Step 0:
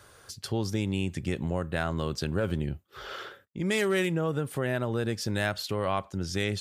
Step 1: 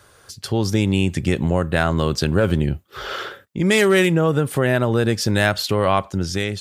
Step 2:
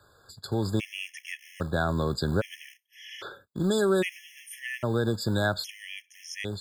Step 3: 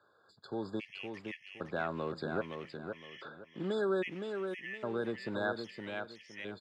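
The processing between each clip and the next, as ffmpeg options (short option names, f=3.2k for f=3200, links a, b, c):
-af "dynaudnorm=f=110:g=9:m=8dB,volume=3dB"
-filter_complex "[0:a]acrossover=split=210[a][b];[a]acrusher=bits=3:mode=log:mix=0:aa=0.000001[c];[c][b]amix=inputs=2:normalize=0,afftfilt=real='re*gt(sin(2*PI*0.62*pts/sr)*(1-2*mod(floor(b*sr/1024/1700),2)),0)':imag='im*gt(sin(2*PI*0.62*pts/sr)*(1-2*mod(floor(b*sr/1024/1700),2)),0)':win_size=1024:overlap=0.75,volume=-7.5dB"
-af "highpass=240,lowpass=2.8k,aecho=1:1:515|1030|1545|2060:0.501|0.145|0.0421|0.0122,volume=-7dB"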